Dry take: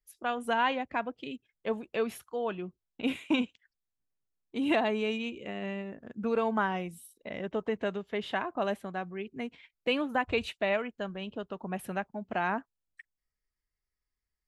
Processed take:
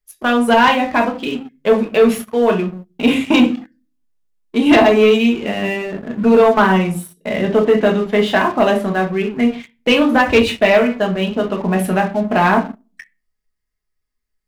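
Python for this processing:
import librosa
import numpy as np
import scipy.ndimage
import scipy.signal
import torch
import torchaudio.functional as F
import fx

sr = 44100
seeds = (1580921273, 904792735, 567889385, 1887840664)

y = fx.room_shoebox(x, sr, seeds[0], volume_m3=220.0, walls='furnished', distance_m=1.4)
y = fx.leveller(y, sr, passes=2)
y = F.gain(torch.from_numpy(y), 8.0).numpy()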